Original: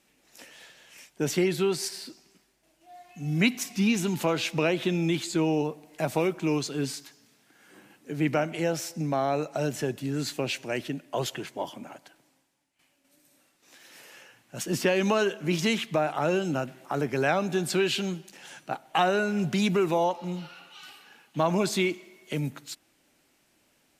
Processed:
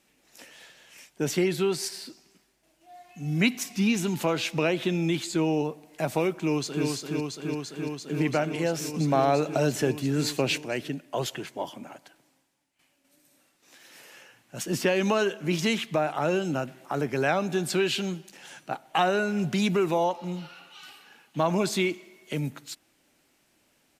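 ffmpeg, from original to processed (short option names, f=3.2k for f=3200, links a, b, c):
-filter_complex "[0:a]asplit=2[a][b];[b]afade=t=in:st=6.35:d=0.01,afade=t=out:st=6.86:d=0.01,aecho=0:1:340|680|1020|1360|1700|2040|2380|2720|3060|3400|3740|4080:0.668344|0.568092|0.482878|0.410447|0.34888|0.296548|0.252066|0.214256|0.182117|0.1548|0.13158|0.111843[c];[a][c]amix=inputs=2:normalize=0,asplit=3[d][e][f];[d]atrim=end=8.942[g];[e]atrim=start=8.938:end=10.582,asetpts=PTS-STARTPTS,volume=4dB[h];[f]atrim=start=10.578[i];[g][h]acrossfade=d=0.004:c1=hsin:c2=hsin[j];[j][i]acrossfade=d=0.004:c1=hsin:c2=hsin"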